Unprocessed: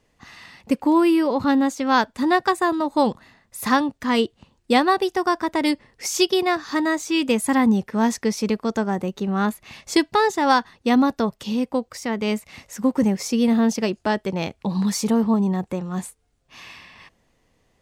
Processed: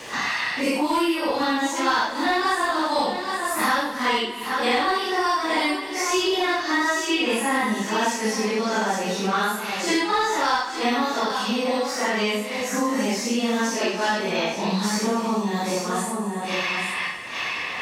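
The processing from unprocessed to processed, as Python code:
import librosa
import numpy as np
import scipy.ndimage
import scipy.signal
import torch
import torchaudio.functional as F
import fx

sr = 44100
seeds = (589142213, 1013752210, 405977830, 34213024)

p1 = fx.phase_scramble(x, sr, seeds[0], window_ms=200)
p2 = fx.highpass(p1, sr, hz=920.0, slope=6)
p3 = fx.high_shelf(p2, sr, hz=10000.0, db=-6.5)
p4 = np.clip(10.0 ** (22.0 / 20.0) * p3, -1.0, 1.0) / 10.0 ** (22.0 / 20.0)
p5 = p3 + (p4 * 10.0 ** (-5.5 / 20.0))
p6 = p5 + 10.0 ** (-13.5 / 20.0) * np.pad(p5, (int(821 * sr / 1000.0), 0))[:len(p5)]
p7 = fx.rev_gated(p6, sr, seeds[1], gate_ms=430, shape='falling', drr_db=10.0)
y = fx.band_squash(p7, sr, depth_pct=100)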